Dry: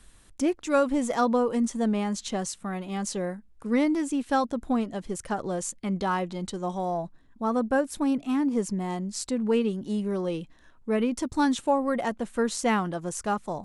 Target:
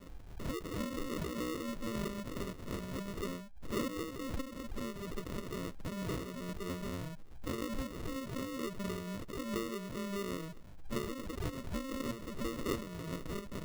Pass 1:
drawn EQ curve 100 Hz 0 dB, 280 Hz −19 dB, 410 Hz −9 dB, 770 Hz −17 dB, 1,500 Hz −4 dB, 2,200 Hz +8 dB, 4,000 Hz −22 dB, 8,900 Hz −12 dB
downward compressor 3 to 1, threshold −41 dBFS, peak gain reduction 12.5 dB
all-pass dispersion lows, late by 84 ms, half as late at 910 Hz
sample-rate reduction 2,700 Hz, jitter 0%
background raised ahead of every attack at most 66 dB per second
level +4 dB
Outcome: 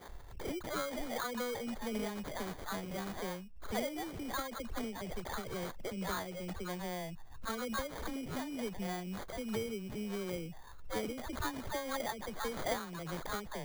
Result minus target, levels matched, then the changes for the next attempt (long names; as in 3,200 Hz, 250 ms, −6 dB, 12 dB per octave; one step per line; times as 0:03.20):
sample-rate reduction: distortion −9 dB
change: sample-rate reduction 800 Hz, jitter 0%